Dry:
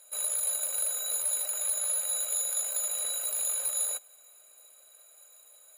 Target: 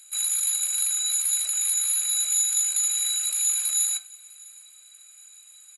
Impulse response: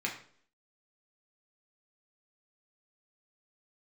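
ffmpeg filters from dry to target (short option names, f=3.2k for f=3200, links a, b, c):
-filter_complex "[0:a]highpass=1.4k,highshelf=f=2.4k:g=10.5,asplit=2[a][b];[1:a]atrim=start_sample=2205,afade=t=out:st=0.14:d=0.01,atrim=end_sample=6615[c];[b][c]afir=irnorm=-1:irlink=0,volume=-6.5dB[d];[a][d]amix=inputs=2:normalize=0,aresample=22050,aresample=44100,aecho=1:1:651:0.0631,volume=-2.5dB"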